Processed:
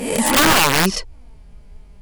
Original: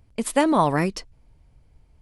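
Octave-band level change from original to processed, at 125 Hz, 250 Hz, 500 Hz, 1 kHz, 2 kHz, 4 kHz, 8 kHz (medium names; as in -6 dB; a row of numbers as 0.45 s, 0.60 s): +3.5 dB, +2.5 dB, +2.0 dB, +5.0 dB, +13.5 dB, +18.0 dB, +15.0 dB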